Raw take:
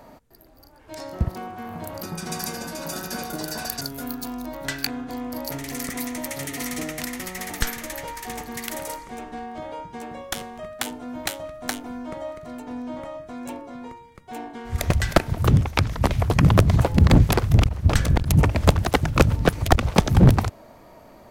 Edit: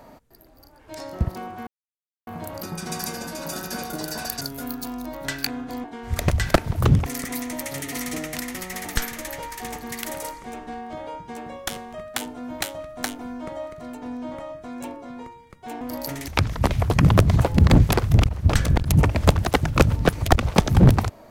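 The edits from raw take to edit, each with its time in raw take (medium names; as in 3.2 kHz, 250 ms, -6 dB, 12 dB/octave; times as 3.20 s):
1.67 s: insert silence 0.60 s
5.24–5.71 s: swap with 14.46–15.68 s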